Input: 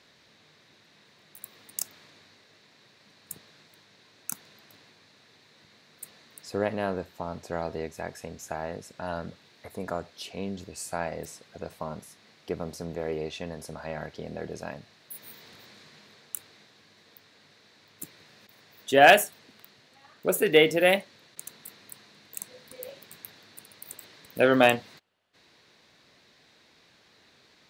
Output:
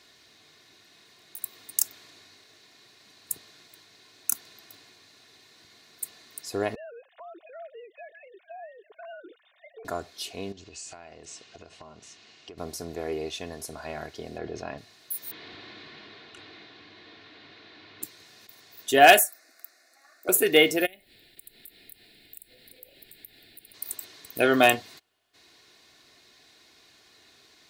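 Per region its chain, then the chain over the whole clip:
0:06.75–0:09.85: three sine waves on the formant tracks + downward compressor 3 to 1, threshold −45 dBFS
0:10.52–0:12.58: Butterworth low-pass 7,400 Hz + parametric band 2,800 Hz +8.5 dB 0.28 octaves + downward compressor 5 to 1, threshold −43 dBFS
0:14.38–0:14.78: high-frequency loss of the air 190 metres + envelope flattener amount 50%
0:15.31–0:18.03: mu-law and A-law mismatch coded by mu + low-pass filter 3,700 Hz 24 dB per octave + parametric band 310 Hz +6 dB 0.28 octaves
0:19.19–0:20.29: high-pass filter 370 Hz 24 dB per octave + hard clipping −21.5 dBFS + phaser with its sweep stopped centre 630 Hz, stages 8
0:20.85–0:23.73: downward compressor 4 to 1, threshold −49 dBFS + background noise pink −70 dBFS + phaser with its sweep stopped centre 2,700 Hz, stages 4
whole clip: high-shelf EQ 4,900 Hz +10 dB; comb filter 2.8 ms, depth 48%; level −1 dB

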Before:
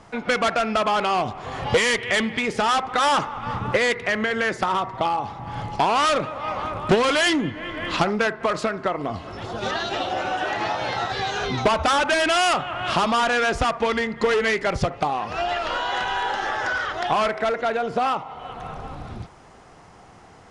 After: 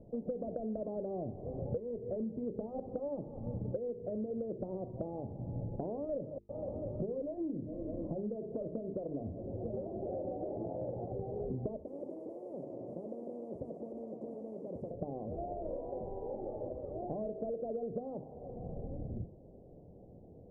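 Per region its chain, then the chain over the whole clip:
0:06.38–0:10.09: mains-hum notches 60/120/180/240/300/360/420 Hz + downward compressor 2 to 1, threshold −23 dBFS + multiband delay without the direct sound highs, lows 110 ms, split 2,700 Hz
0:11.76–0:14.91: high-pass filter 1,100 Hz + echo through a band-pass that steps 101 ms, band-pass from 5,900 Hz, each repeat −0.7 octaves, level −1.5 dB + every bin compressed towards the loudest bin 10 to 1
whole clip: elliptic low-pass filter 570 Hz, stop band 60 dB; mains-hum notches 50/100/150/200/250/300/350/400/450 Hz; downward compressor 6 to 1, threshold −33 dBFS; level −2 dB

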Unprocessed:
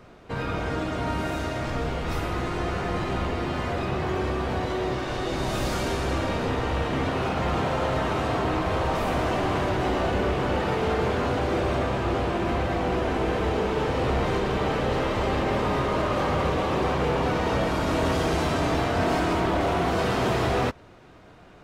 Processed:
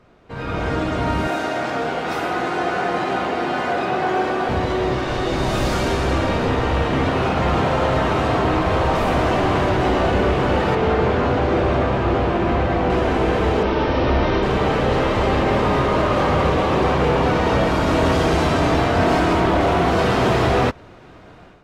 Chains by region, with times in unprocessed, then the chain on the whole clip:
0:01.28–0:04.49: high-pass filter 240 Hz + hollow resonant body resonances 750/1,500 Hz, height 9 dB
0:10.75–0:12.90: low-pass filter 8,500 Hz + high-shelf EQ 4,000 Hz −6.5 dB
0:13.63–0:14.43: Chebyshev low-pass filter 5,800 Hz, order 5 + comb filter 3.3 ms, depth 35%
whole clip: high-shelf EQ 7,400 Hz −7 dB; automatic gain control gain up to 11 dB; level −4 dB

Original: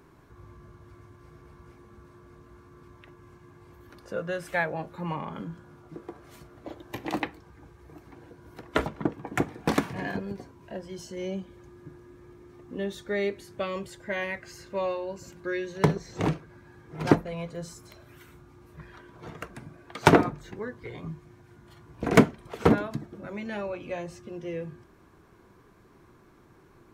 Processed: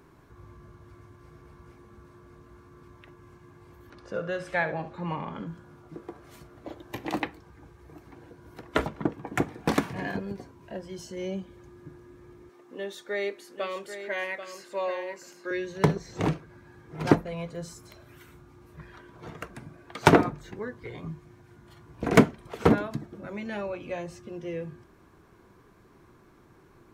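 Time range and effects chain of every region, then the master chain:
0:03.90–0:05.47: low-pass filter 6,600 Hz + flutter between parallel walls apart 11.6 metres, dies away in 0.34 s
0:12.49–0:15.51: high-pass filter 390 Hz + single-tap delay 787 ms −9.5 dB
whole clip: no processing

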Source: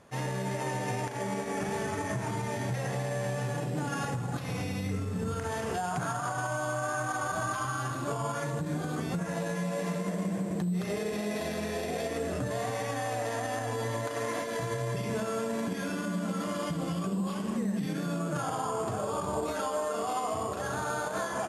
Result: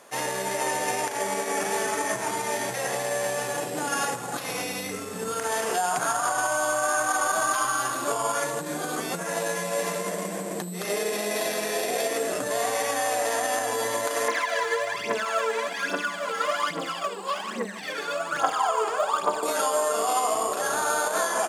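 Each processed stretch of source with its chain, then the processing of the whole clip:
0:14.28–0:19.43: low-pass filter 2,100 Hz + spectral tilt +4.5 dB per octave + phase shifter 1.2 Hz, delay 2.5 ms, feedback 71%
whole clip: high-pass filter 400 Hz 12 dB per octave; high-shelf EQ 7,100 Hz +10.5 dB; level +7.5 dB

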